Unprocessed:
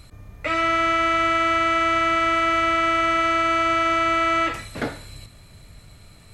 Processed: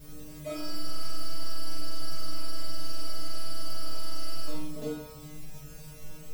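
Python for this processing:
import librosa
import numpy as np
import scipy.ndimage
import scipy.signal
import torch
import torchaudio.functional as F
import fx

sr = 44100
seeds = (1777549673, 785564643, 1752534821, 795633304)

p1 = scipy.ndimage.median_filter(x, 25, mode='constant')
p2 = fx.peak_eq(p1, sr, hz=1500.0, db=-9.0, octaves=1.4)
p3 = p2 + 0.61 * np.pad(p2, (int(4.6 * sr / 1000.0), 0))[:len(p2)]
p4 = fx.over_compress(p3, sr, threshold_db=-42.0, ratio=-1.0)
p5 = p3 + F.gain(torch.from_numpy(p4), -0.5).numpy()
p6 = fx.quant_dither(p5, sr, seeds[0], bits=8, dither='triangular')
p7 = fx.stiff_resonator(p6, sr, f0_hz=150.0, decay_s=0.84, stiffness=0.002)
p8 = p7 + fx.room_flutter(p7, sr, wall_m=7.4, rt60_s=0.54, dry=0)
y = F.gain(torch.from_numpy(p8), 9.0).numpy()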